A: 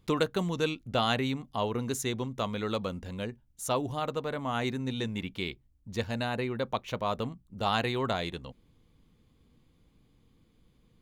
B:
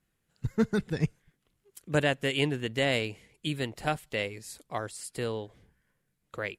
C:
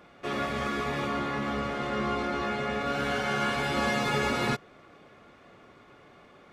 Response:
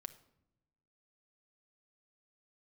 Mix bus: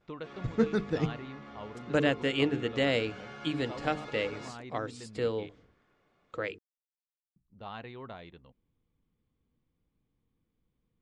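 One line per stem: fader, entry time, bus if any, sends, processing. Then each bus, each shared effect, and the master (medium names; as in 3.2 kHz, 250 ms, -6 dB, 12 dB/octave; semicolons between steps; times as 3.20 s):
-14.0 dB, 0.00 s, muted 5.49–7.36 s, no send, low-pass 2.9 kHz 12 dB/octave
-2.5 dB, 0.00 s, no send, hum notches 50/100/150/200/250/300/350/400/450 Hz; small resonant body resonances 300/470/1300 Hz, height 8 dB
-17.5 dB, 0.00 s, no send, gate with hold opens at -46 dBFS; endings held to a fixed fall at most 270 dB/s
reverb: none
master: low-pass 6.6 kHz 24 dB/octave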